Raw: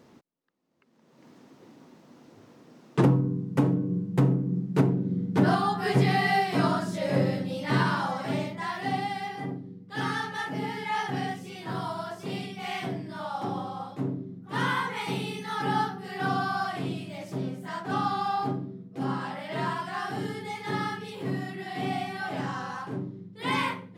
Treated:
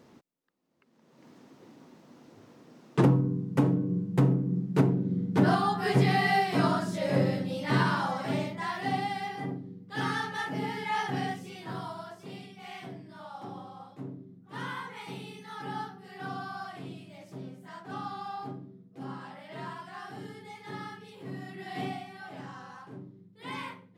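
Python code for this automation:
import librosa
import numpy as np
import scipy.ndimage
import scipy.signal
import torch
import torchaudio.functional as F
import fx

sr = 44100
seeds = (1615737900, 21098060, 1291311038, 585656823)

y = fx.gain(x, sr, db=fx.line((11.31, -1.0), (12.38, -10.0), (21.26, -10.0), (21.8, -2.0), (22.04, -11.0)))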